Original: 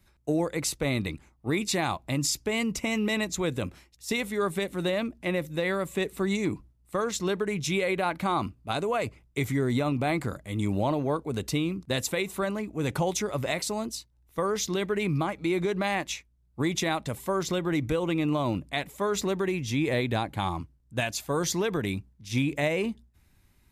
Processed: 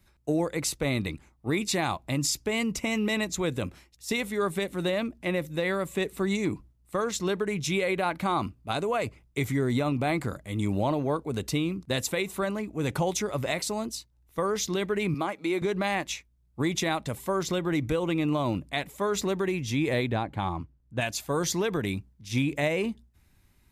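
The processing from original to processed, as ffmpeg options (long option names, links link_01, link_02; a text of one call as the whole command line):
ffmpeg -i in.wav -filter_complex "[0:a]asettb=1/sr,asplit=3[link_01][link_02][link_03];[link_01]atrim=end=15.144[link_04];[link_02]atrim=start=15.14:end=15.62,asetpts=PTS-STARTPTS,afade=type=in:duration=0.004:curve=qsin,afade=type=out:start_time=0.476:duration=0.004:curve=qsin,highpass=250[link_05];[link_03]atrim=start=15.616[link_06];[link_04][link_05]acrossfade=duration=0.004:curve1=hsin:curve2=qsin[link_07];[link_07][link_06]acrossfade=duration=0.004:curve1=qsin:curve2=hsin,asplit=3[link_08][link_09][link_10];[link_08]afade=type=out:start_time=20.07:duration=0.02[link_11];[link_09]lowpass=frequency=2100:poles=1,afade=type=in:start_time=20.07:duration=0.02,afade=type=out:start_time=21:duration=0.02[link_12];[link_10]afade=type=in:start_time=21:duration=0.02[link_13];[link_11][link_12][link_13]amix=inputs=3:normalize=0" out.wav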